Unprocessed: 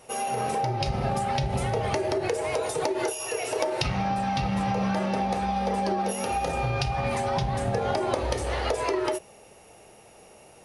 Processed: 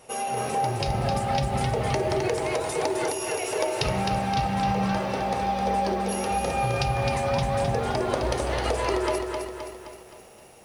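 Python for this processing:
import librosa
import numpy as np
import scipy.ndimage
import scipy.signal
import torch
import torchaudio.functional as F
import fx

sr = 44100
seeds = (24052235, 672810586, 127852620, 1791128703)

y = fx.echo_crushed(x, sr, ms=261, feedback_pct=55, bits=9, wet_db=-5)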